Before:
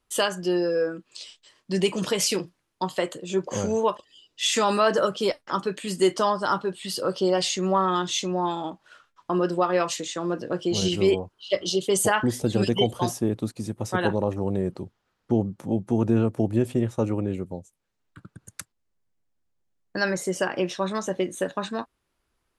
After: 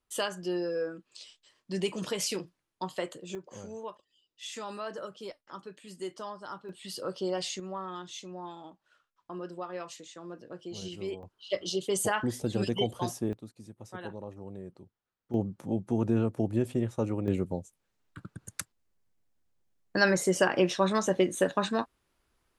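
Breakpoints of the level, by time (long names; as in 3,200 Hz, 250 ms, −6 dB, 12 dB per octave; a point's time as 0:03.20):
−8 dB
from 0:03.35 −17.5 dB
from 0:06.69 −9.5 dB
from 0:07.60 −16 dB
from 0:11.23 −7 dB
from 0:13.33 −17 dB
from 0:15.34 −5.5 dB
from 0:17.28 +1 dB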